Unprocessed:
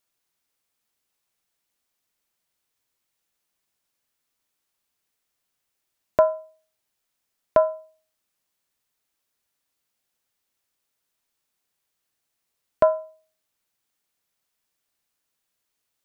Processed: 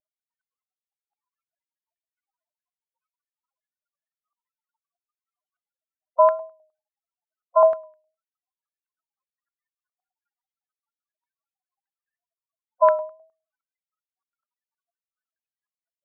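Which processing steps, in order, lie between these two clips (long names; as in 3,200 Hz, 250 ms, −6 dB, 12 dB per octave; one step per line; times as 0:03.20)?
high-pass filter 470 Hz 24 dB per octave
brickwall limiter −17 dBFS, peak gain reduction 11 dB
spectral peaks only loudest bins 8
pitch vibrato 1.6 Hz 32 cents
low-pass on a step sequencer 9.7 Hz 720–1,600 Hz
level +4 dB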